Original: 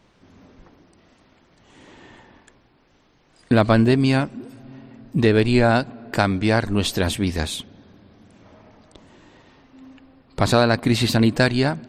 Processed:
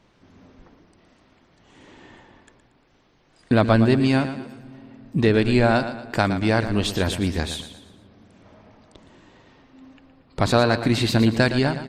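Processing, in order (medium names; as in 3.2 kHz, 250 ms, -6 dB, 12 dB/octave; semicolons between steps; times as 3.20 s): treble shelf 11 kHz -7.5 dB; on a send: feedback delay 116 ms, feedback 42%, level -11 dB; on the sum: trim -1.5 dB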